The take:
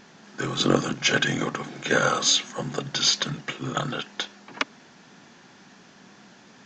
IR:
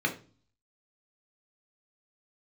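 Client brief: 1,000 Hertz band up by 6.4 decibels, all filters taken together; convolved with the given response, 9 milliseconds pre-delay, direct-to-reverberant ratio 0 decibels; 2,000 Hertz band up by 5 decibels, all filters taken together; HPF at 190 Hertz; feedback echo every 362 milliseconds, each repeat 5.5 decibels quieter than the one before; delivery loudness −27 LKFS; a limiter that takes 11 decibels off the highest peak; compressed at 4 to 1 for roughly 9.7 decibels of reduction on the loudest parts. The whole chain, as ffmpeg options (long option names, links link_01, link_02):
-filter_complex "[0:a]highpass=190,equalizer=frequency=1000:width_type=o:gain=7.5,equalizer=frequency=2000:width_type=o:gain=3.5,acompressor=threshold=-25dB:ratio=4,alimiter=limit=-19dB:level=0:latency=1,aecho=1:1:362|724|1086|1448|1810|2172|2534:0.531|0.281|0.149|0.079|0.0419|0.0222|0.0118,asplit=2[link_01][link_02];[1:a]atrim=start_sample=2205,adelay=9[link_03];[link_02][link_03]afir=irnorm=-1:irlink=0,volume=-9.5dB[link_04];[link_01][link_04]amix=inputs=2:normalize=0"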